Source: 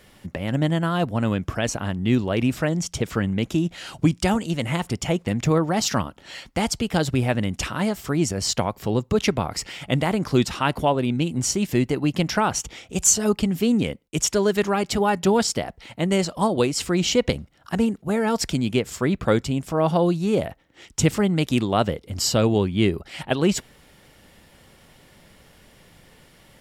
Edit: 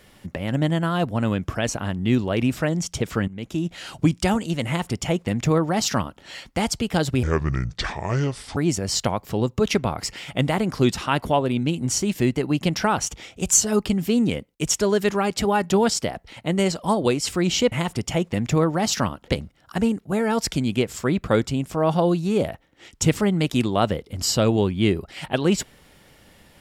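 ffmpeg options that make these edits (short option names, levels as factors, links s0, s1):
-filter_complex "[0:a]asplit=6[s0][s1][s2][s3][s4][s5];[s0]atrim=end=3.28,asetpts=PTS-STARTPTS,afade=t=out:st=3.276:d=0.004:c=hsin:silence=0.133352[s6];[s1]atrim=start=3.28:end=7.234,asetpts=PTS-STARTPTS,afade=t=in:d=0.49:silence=0.133352[s7];[s2]atrim=start=7.23:end=8.1,asetpts=PTS-STARTPTS,asetrate=28665,aresample=44100,atrim=end_sample=59026,asetpts=PTS-STARTPTS[s8];[s3]atrim=start=8.096:end=17.252[s9];[s4]atrim=start=4.658:end=6.222[s10];[s5]atrim=start=17.248[s11];[s6][s7]concat=n=2:v=0:a=1[s12];[s12][s8]acrossfade=d=0.004:c1=hsin:c2=hsin[s13];[s13][s9]acrossfade=d=0.004:c1=hsin:c2=hsin[s14];[s14][s10]acrossfade=d=0.004:c1=hsin:c2=hsin[s15];[s15][s11]acrossfade=d=0.004:c1=hsin:c2=hsin"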